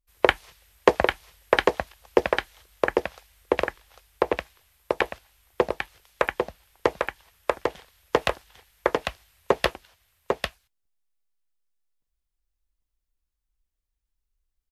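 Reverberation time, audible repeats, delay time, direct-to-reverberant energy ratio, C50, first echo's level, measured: none, 1, 0.798 s, none, none, -4.0 dB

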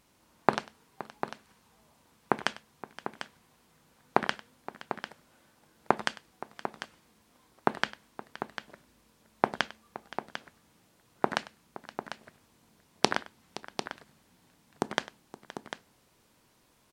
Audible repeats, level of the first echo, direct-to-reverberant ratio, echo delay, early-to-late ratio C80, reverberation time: 3, -19.5 dB, none, 99 ms, none, none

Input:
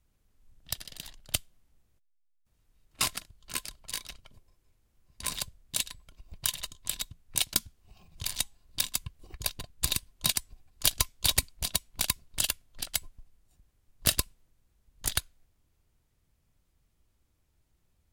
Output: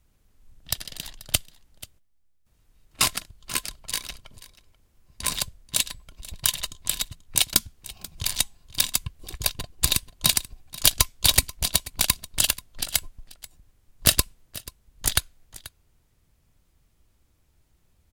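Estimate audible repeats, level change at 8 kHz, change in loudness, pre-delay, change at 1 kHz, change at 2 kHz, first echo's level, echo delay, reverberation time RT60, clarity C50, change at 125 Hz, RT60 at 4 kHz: 1, +7.0 dB, +7.0 dB, none, +7.0 dB, +7.0 dB, -19.0 dB, 0.485 s, none, none, +7.0 dB, none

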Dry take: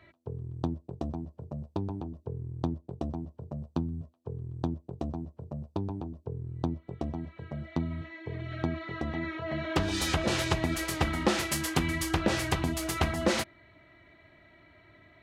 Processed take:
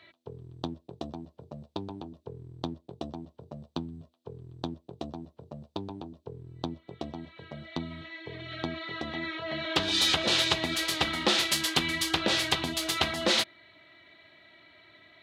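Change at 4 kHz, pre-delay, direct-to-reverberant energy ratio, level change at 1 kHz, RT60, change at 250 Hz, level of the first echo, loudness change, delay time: +10.0 dB, none, none, +0.5 dB, none, -3.5 dB, none, +4.0 dB, none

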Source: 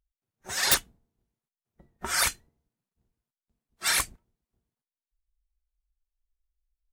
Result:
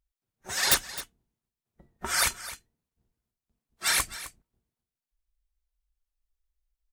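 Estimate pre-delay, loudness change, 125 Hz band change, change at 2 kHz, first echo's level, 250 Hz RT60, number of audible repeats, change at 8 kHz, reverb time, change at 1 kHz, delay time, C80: none, 0.0 dB, 0.0 dB, 0.0 dB, -15.0 dB, none, 1, 0.0 dB, none, 0.0 dB, 0.261 s, none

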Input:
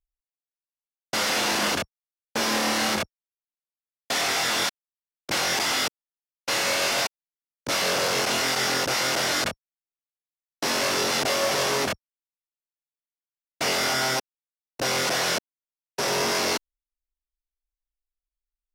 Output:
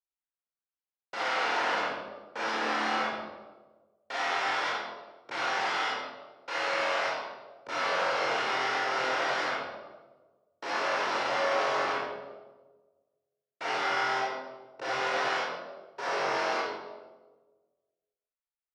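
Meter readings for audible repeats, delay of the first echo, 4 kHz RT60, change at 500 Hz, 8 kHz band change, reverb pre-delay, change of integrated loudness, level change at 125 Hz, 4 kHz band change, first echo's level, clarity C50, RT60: none, none, 0.85 s, -4.0 dB, -19.5 dB, 28 ms, -6.0 dB, -14.5 dB, -11.0 dB, none, -1.5 dB, 1.3 s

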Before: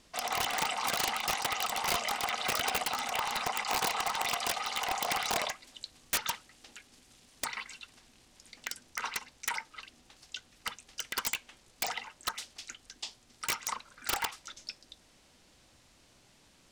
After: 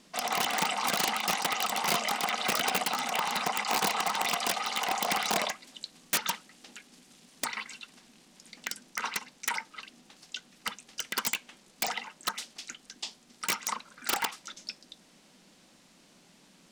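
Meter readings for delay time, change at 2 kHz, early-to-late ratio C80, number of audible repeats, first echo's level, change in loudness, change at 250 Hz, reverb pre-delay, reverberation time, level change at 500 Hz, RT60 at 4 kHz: none, +2.5 dB, none, none, none, +2.5 dB, +7.0 dB, none, none, +3.0 dB, none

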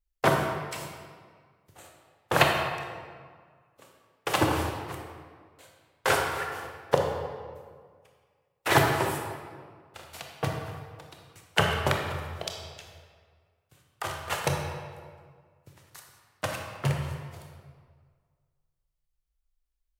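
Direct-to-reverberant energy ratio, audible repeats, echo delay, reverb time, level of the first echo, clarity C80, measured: 1.0 dB, none, none, 1.8 s, none, 4.5 dB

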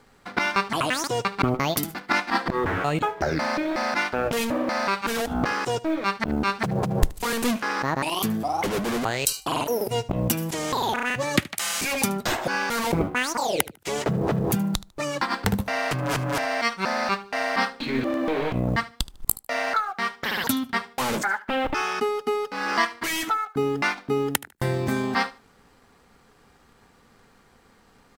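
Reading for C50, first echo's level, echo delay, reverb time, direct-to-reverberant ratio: none, -19.0 dB, 75 ms, none, none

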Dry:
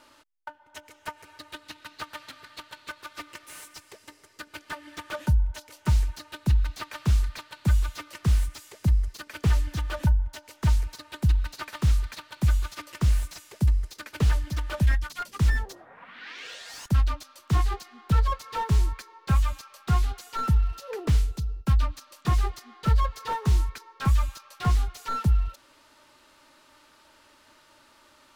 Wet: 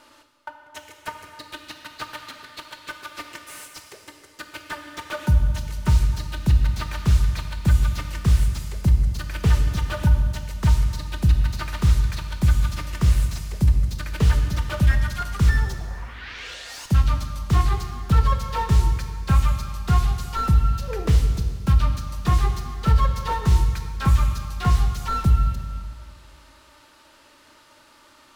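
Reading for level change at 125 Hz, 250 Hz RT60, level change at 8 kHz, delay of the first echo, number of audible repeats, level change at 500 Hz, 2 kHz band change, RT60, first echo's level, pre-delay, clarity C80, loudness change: +5.0 dB, 1.8 s, +4.5 dB, none, none, +4.5 dB, +4.5 dB, 1.7 s, none, 19 ms, 8.0 dB, +5.0 dB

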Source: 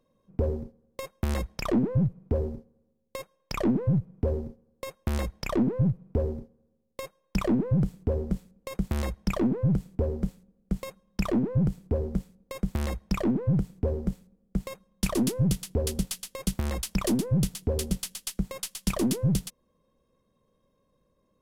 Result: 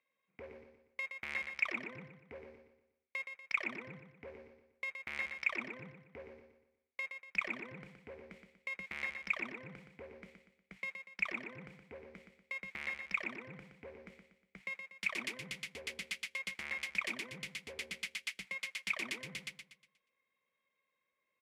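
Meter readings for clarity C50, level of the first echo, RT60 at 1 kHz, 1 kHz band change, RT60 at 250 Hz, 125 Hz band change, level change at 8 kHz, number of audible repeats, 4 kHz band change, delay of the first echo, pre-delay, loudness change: none, -7.0 dB, none, -10.5 dB, none, -31.0 dB, -15.5 dB, 4, -6.0 dB, 0.12 s, none, -10.5 dB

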